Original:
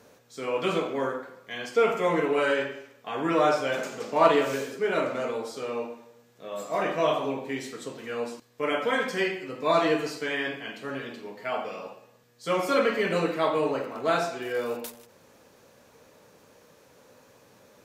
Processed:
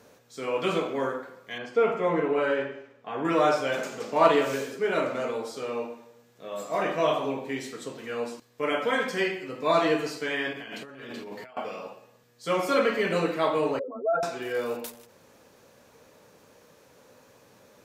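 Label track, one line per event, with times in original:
1.580000	3.250000	LPF 1600 Hz 6 dB/oct
10.530000	11.570000	negative-ratio compressor -42 dBFS
13.790000	14.230000	spectral contrast raised exponent 3.5

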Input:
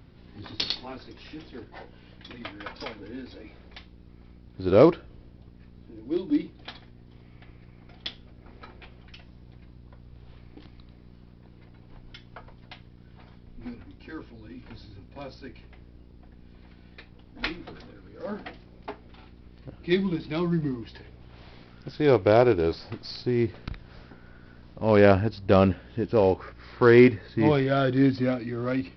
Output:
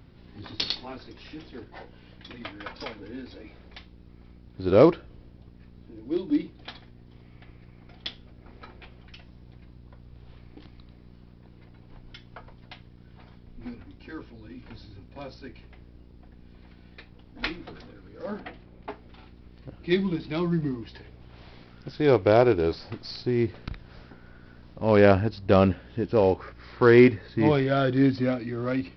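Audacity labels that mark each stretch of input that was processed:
18.400000	18.900000	LPF 3500 Hz

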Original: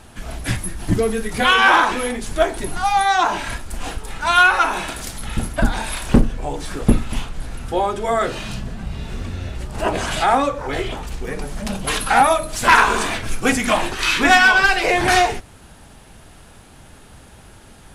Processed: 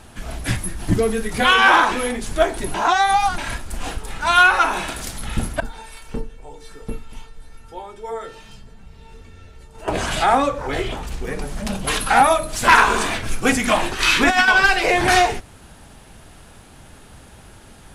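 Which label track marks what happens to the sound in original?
2.740000	3.380000	reverse
5.600000	9.880000	resonator 450 Hz, decay 0.2 s, mix 90%
14.000000	14.480000	negative-ratio compressor -14 dBFS, ratio -0.5

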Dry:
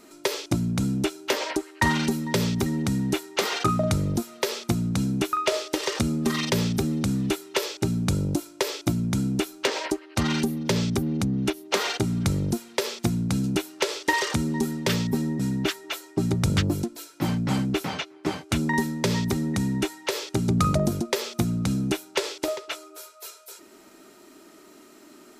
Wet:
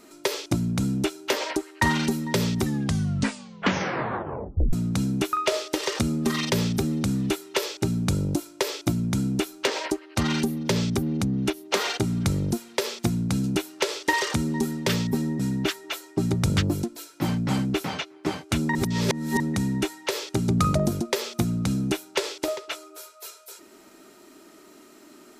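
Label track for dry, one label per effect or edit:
2.570000	2.570000	tape stop 2.16 s
18.750000	19.400000	reverse

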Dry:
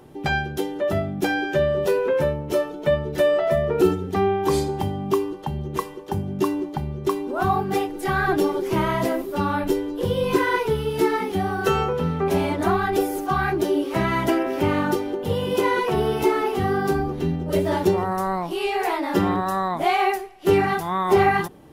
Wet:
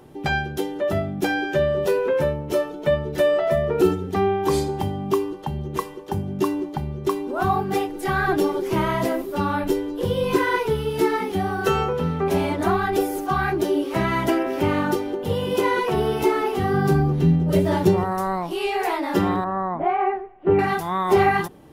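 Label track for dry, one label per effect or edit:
16.730000	18.040000	bell 140 Hz +12.5 dB
19.440000	20.590000	Bessel low-pass 1300 Hz, order 4

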